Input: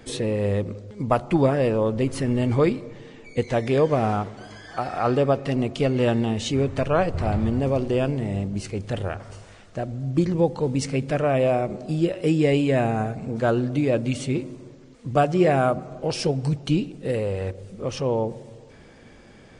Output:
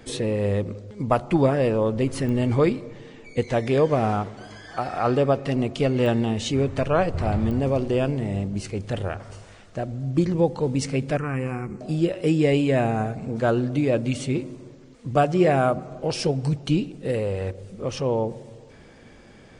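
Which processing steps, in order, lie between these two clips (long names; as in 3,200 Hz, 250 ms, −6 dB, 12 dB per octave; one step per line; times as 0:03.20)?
0:11.17–0:11.81: phaser with its sweep stopped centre 1,500 Hz, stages 4
digital clicks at 0:02.29/0:06.06/0:07.51, −21 dBFS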